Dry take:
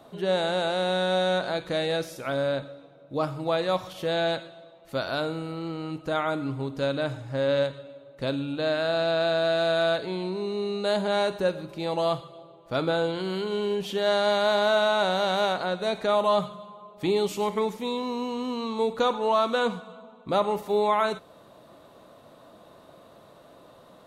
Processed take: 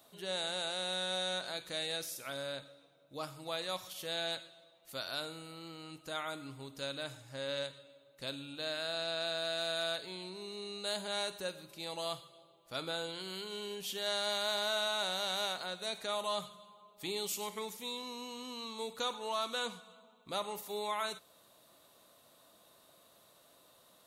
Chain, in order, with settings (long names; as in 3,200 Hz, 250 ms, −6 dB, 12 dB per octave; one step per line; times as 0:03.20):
first-order pre-emphasis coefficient 0.9
level +2.5 dB